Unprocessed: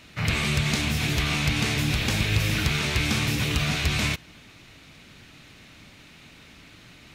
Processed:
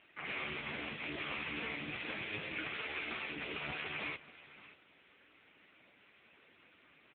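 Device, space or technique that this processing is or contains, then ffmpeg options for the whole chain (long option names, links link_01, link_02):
satellite phone: -filter_complex "[0:a]acrossover=split=6400[link_01][link_02];[link_02]acompressor=threshold=-44dB:ratio=4:attack=1:release=60[link_03];[link_01][link_03]amix=inputs=2:normalize=0,asettb=1/sr,asplit=3[link_04][link_05][link_06];[link_04]atrim=end=2.744[link_07];[link_05]atrim=start=2.74:end=3.36,asetpts=PTS-STARTPTS,afade=type=in:duration=0.004:curve=qsin,afade=type=out:start_time=0.616:duration=0.004:curve=qsin,bass=frequency=250:gain=-8,treble=frequency=4000:gain=3[link_08];[link_06]atrim=start=3.356[link_09];[link_07][link_08]acrossfade=duration=0.004:curve1=hsin:curve2=qsin[link_10];[link_10][link_09]acrossfade=duration=0.004:curve1=qsin:curve2=hsin,highpass=340,lowpass=3200,aecho=1:1:577:0.15,volume=-6.5dB" -ar 8000 -c:a libopencore_amrnb -b:a 5900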